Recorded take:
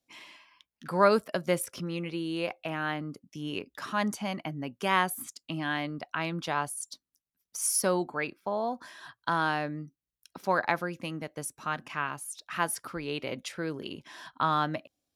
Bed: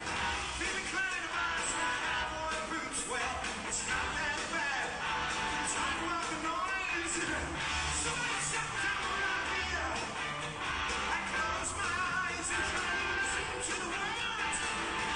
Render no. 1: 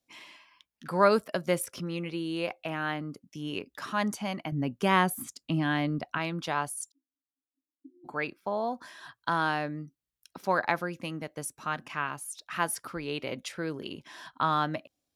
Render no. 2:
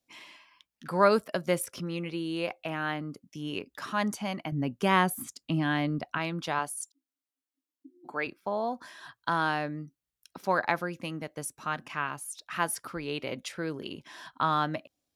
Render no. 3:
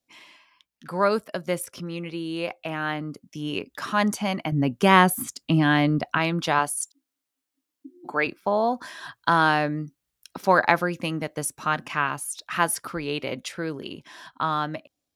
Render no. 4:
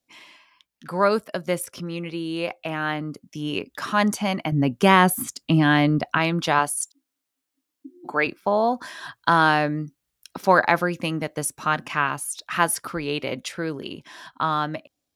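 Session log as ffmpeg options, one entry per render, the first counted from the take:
-filter_complex "[0:a]asettb=1/sr,asplit=3[a][b][c];[a]atrim=end=4.524[d];[b]atrim=start=4.52:end=6.18,asetpts=PTS-STARTPTS,afade=t=in:d=0.004:c=qsin,afade=t=out:st=1.656:d=0.004:c=qsin,lowshelf=f=380:g=9.5[e];[c]atrim=start=6.176[f];[d][e]acrossfade=d=0.004:c1=hsin:c2=qsin[g];[g][f]acrossfade=d=0.004:c1=qsin:c2=hsin,asplit=3[h][i][j];[h]afade=t=out:st=6.9:d=0.02[k];[i]asuperpass=centerf=290:order=12:qfactor=4.3,afade=t=in:st=6.9:d=0.02,afade=t=out:st=8.04:d=0.02[l];[j]afade=t=in:st=8.04:d=0.02[m];[k][l][m]amix=inputs=3:normalize=0"
-filter_complex "[0:a]asettb=1/sr,asplit=3[a][b][c];[a]atrim=end=6.594[d];[b]atrim=start=6.59:end=8.27,asetpts=PTS-STARTPTS,afade=t=in:d=0.004:c=qsin,afade=t=out:st=1.676:d=0.004:c=qsin,highpass=200[e];[c]atrim=start=8.266[f];[d][e]acrossfade=d=0.004:c1=hsin:c2=qsin[g];[g][f]acrossfade=d=0.004:c1=qsin:c2=hsin"
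-af "dynaudnorm=f=680:g=9:m=11.5dB"
-af "volume=2dB,alimiter=limit=-3dB:level=0:latency=1"

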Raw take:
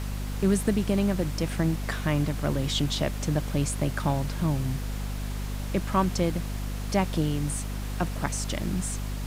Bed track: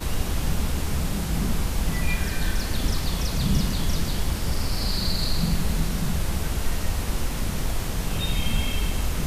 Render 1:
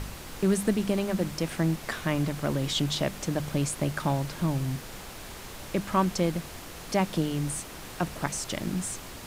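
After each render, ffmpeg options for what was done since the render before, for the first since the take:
-af "bandreject=f=50:t=h:w=4,bandreject=f=100:t=h:w=4,bandreject=f=150:t=h:w=4,bandreject=f=200:t=h:w=4,bandreject=f=250:t=h:w=4"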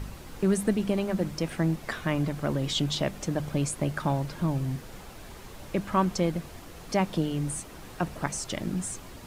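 -af "afftdn=nr=7:nf=-42"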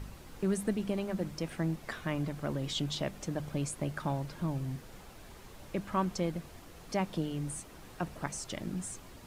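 -af "volume=-6.5dB"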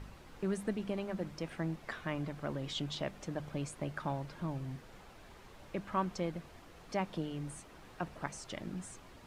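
-af "lowpass=f=3k:p=1,lowshelf=f=490:g=-5.5"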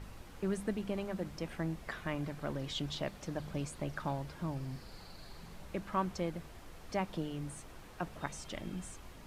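-filter_complex "[1:a]volume=-29dB[a];[0:a][a]amix=inputs=2:normalize=0"

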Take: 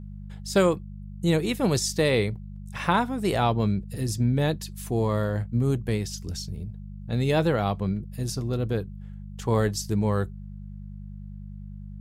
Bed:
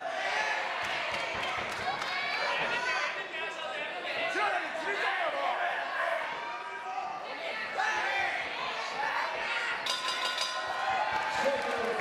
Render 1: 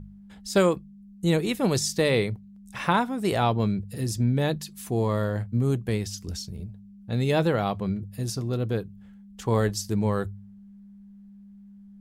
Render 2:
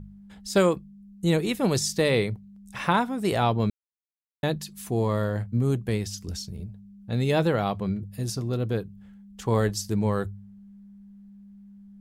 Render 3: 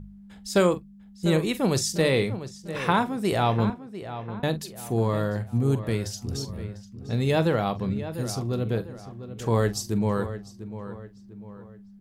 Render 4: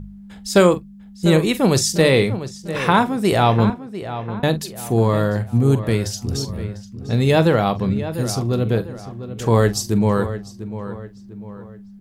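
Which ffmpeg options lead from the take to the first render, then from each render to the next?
-af "bandreject=f=50:t=h:w=4,bandreject=f=100:t=h:w=4,bandreject=f=150:t=h:w=4"
-filter_complex "[0:a]asplit=3[a][b][c];[a]atrim=end=3.7,asetpts=PTS-STARTPTS,afade=t=out:st=3.696:d=0.004:c=hsin[d];[b]atrim=start=3.7:end=4.43,asetpts=PTS-STARTPTS,volume=0[e];[c]atrim=start=4.43,asetpts=PTS-STARTPTS,afade=t=in:d=0.004:c=hsin[f];[d][e][f]concat=n=3:v=0:a=1"
-filter_complex "[0:a]asplit=2[a][b];[b]adelay=44,volume=-14dB[c];[a][c]amix=inputs=2:normalize=0,asplit=2[d][e];[e]adelay=698,lowpass=f=2.8k:p=1,volume=-12dB,asplit=2[f][g];[g]adelay=698,lowpass=f=2.8k:p=1,volume=0.42,asplit=2[h][i];[i]adelay=698,lowpass=f=2.8k:p=1,volume=0.42,asplit=2[j][k];[k]adelay=698,lowpass=f=2.8k:p=1,volume=0.42[l];[d][f][h][j][l]amix=inputs=5:normalize=0"
-af "volume=7.5dB,alimiter=limit=-2dB:level=0:latency=1"

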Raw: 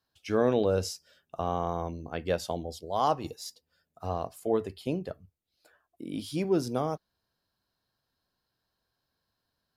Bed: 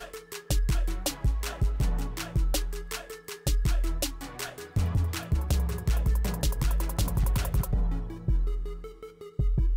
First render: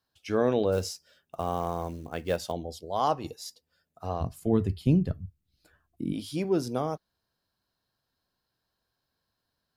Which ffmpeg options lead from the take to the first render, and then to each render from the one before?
-filter_complex "[0:a]asettb=1/sr,asplit=3[a][b][c];[a]atrim=end=0.724[d];[b]atrim=start=0.72:end=2.52,asetpts=PTS-STARTPTS,afade=t=in:d=0.004:c=qsin,afade=t=out:st=1.796:d=0.004:c=qsin,acrusher=bits=6:mode=log:mix=0:aa=0.000001[e];[c]atrim=start=2.516[f];[d][e]acrossfade=d=0.004:c1=hsin:c2=qsin[g];[g][f]acrossfade=d=0.004:c1=qsin:c2=hsin,asplit=3[h][i][j];[h]afade=t=out:st=4.2:d=0.02[k];[i]asubboost=boost=9.5:cutoff=190,afade=t=in:st=4.2:d=0.02,afade=t=out:st=6.12:d=0.02[l];[j]afade=t=in:st=6.12:d=0.02[m];[k][l][m]amix=inputs=3:normalize=0"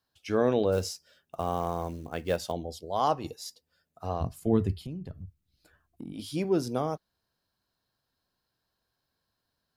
-filter_complex "[0:a]asplit=3[a][b][c];[a]afade=t=out:st=4.78:d=0.02[d];[b]acompressor=threshold=-36dB:ratio=6:attack=3.2:release=140:knee=1:detection=peak,afade=t=in:st=4.78:d=0.02,afade=t=out:st=6.18:d=0.02[e];[c]afade=t=in:st=6.18:d=0.02[f];[d][e][f]amix=inputs=3:normalize=0"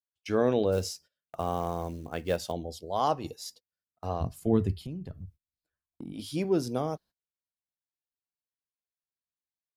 -af "agate=range=-27dB:threshold=-51dB:ratio=16:detection=peak,adynamicequalizer=threshold=0.00631:dfrequency=1200:dqfactor=1:tfrequency=1200:tqfactor=1:attack=5:release=100:ratio=0.375:range=2.5:mode=cutabove:tftype=bell"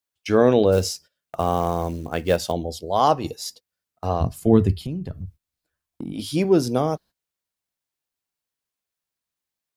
-af "volume=9dB"

